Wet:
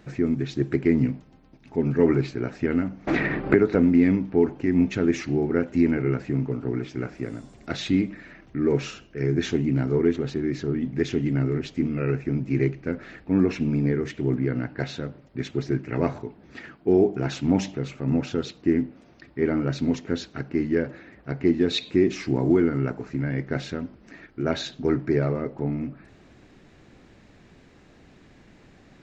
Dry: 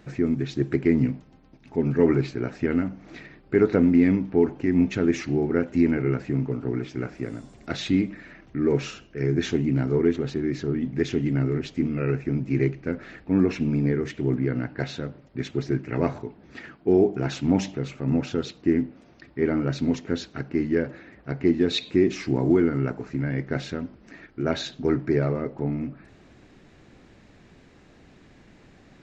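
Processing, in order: 3.07–3.75 three-band squash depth 100%

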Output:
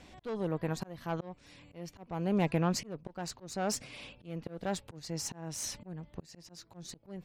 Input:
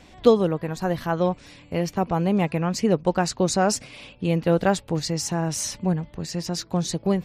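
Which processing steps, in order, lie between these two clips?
tube stage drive 16 dB, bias 0.5; auto swell 0.516 s; gain -3 dB

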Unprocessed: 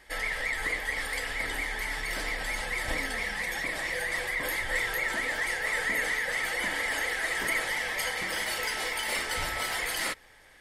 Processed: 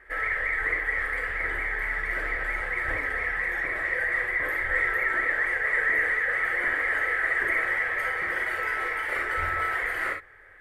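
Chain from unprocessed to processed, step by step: EQ curve 120 Hz 0 dB, 230 Hz -13 dB, 380 Hz +4 dB, 560 Hz 0 dB, 920 Hz -5 dB, 1300 Hz +7 dB, 1900 Hz +5 dB, 3000 Hz -12 dB, 5000 Hz -22 dB, 15000 Hz -14 dB; non-linear reverb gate 80 ms rising, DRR 4.5 dB

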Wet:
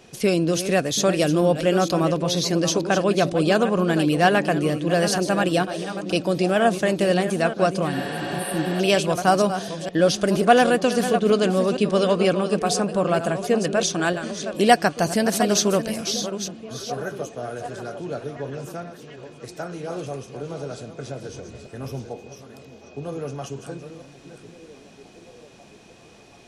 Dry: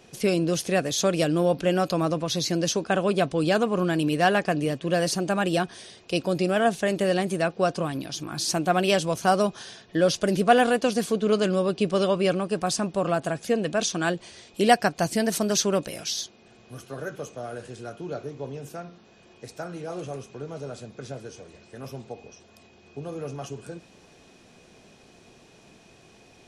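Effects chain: reverse delay 0.471 s, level -10 dB; 7.96–8.77 spectral repair 380–8400 Hz before; 21.29–22.1 low shelf 120 Hz +11 dB; delay with a stepping band-pass 0.735 s, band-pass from 220 Hz, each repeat 0.7 oct, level -10 dB; gain +3 dB

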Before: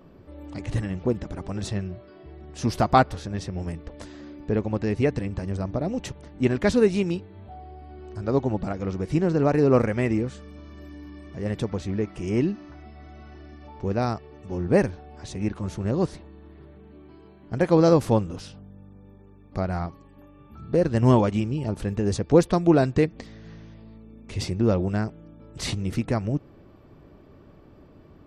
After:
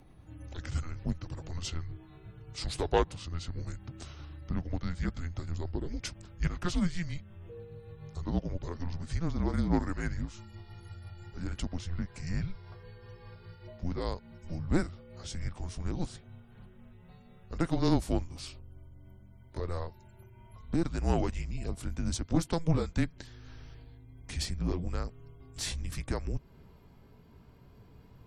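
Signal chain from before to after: gliding pitch shift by -3.5 st ending unshifted; high shelf 5600 Hz +12 dB; in parallel at +3 dB: compressor, threshold -33 dBFS, peak gain reduction 19 dB; on the sum: added harmonics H 2 -17 dB, 3 -26 dB, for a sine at -2.5 dBFS; frequency shift -170 Hz; gain -9 dB

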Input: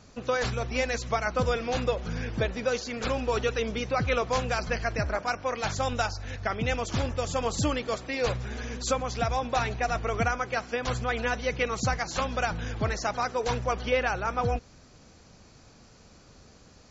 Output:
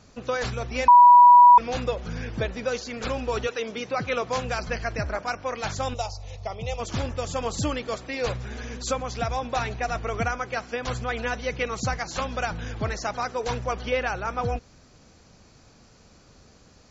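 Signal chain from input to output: 0.88–1.58 bleep 975 Hz -8 dBFS; 3.46–4.42 HPF 330 Hz -> 86 Hz 12 dB/oct; 5.94–6.8 fixed phaser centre 660 Hz, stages 4

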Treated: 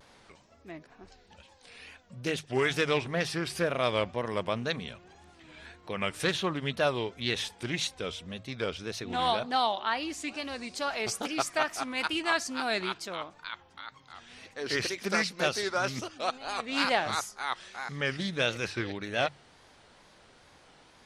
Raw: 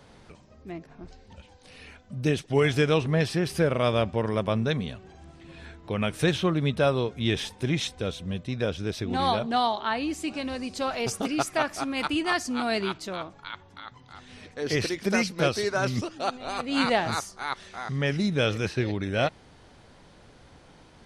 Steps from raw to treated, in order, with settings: low shelf 450 Hz -11 dB; notches 50/100/150 Hz; wow and flutter 120 cents; Doppler distortion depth 0.12 ms

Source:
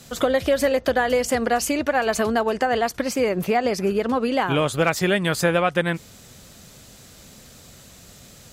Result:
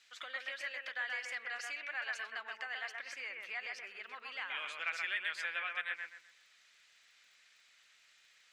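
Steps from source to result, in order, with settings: ladder band-pass 2500 Hz, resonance 35%; crackle 61/s -61 dBFS; analogue delay 0.127 s, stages 2048, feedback 31%, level -3 dB; gain -2.5 dB

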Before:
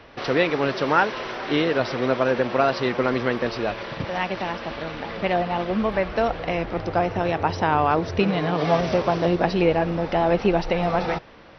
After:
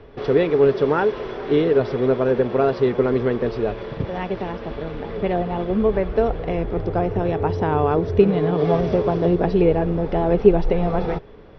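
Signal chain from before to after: tilt -3 dB/oct; small resonant body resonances 420/3400 Hz, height 14 dB, ringing for 75 ms; gain -4 dB

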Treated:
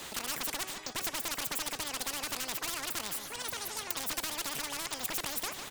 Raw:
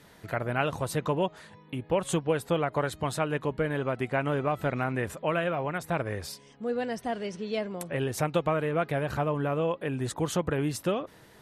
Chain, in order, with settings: one-sided fold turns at -22.5 dBFS; de-hum 189.6 Hz, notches 32; on a send: feedback echo 0.302 s, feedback 34%, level -22 dB; on the sum: speed mistake 7.5 ips tape played at 15 ips; spectral compressor 4:1; gain +1.5 dB

